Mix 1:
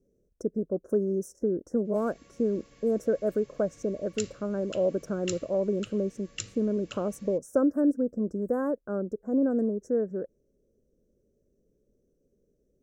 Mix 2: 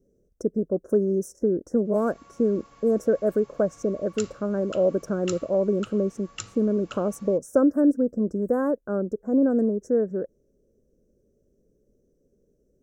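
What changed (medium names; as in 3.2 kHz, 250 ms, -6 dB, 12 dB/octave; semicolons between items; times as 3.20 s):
speech +4.5 dB; background: add high-order bell 1 kHz +12.5 dB 1.2 oct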